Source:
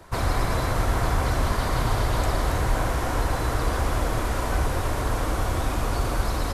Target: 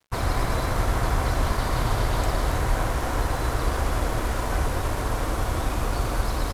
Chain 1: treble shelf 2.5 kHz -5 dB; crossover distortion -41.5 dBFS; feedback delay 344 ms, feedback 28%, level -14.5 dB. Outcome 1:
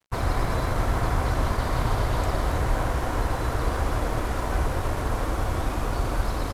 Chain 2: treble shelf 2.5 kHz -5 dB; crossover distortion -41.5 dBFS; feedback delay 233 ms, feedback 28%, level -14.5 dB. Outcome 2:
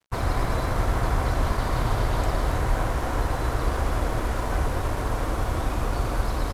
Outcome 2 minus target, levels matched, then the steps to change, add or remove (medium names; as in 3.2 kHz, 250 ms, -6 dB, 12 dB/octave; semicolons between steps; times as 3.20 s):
4 kHz band -3.0 dB
remove: treble shelf 2.5 kHz -5 dB